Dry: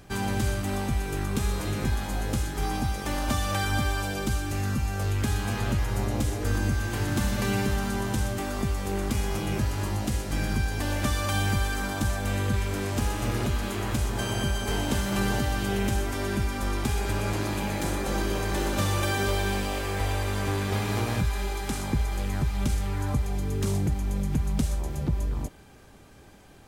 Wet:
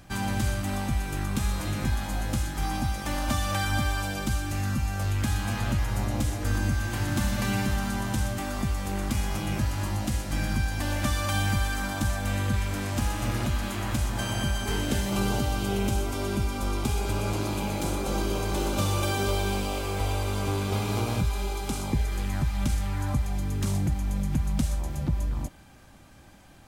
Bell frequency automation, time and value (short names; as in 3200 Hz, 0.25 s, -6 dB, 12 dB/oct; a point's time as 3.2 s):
bell -15 dB 0.23 oct
14.59 s 420 Hz
15.16 s 1800 Hz
21.88 s 1800 Hz
22.31 s 420 Hz